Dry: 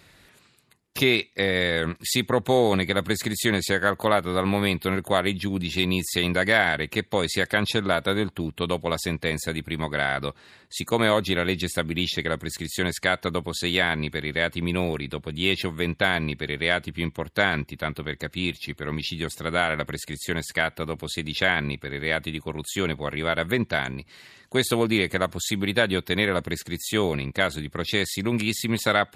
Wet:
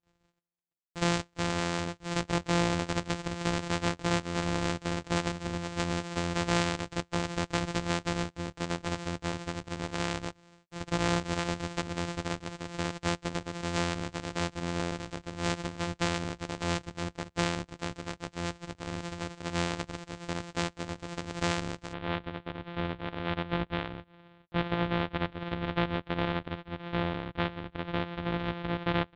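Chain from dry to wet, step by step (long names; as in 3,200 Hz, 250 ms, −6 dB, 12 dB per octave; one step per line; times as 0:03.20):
samples sorted by size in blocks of 256 samples
elliptic low-pass filter 7,800 Hz, stop band 80 dB, from 0:21.92 3,600 Hz
noise gate −53 dBFS, range −31 dB
level −6.5 dB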